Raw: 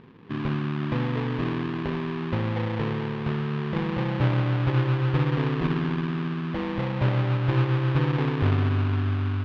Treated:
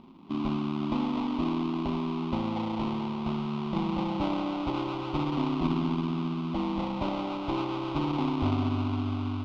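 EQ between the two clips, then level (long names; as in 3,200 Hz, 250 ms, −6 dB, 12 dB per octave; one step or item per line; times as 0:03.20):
phaser with its sweep stopped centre 460 Hz, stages 6
+2.0 dB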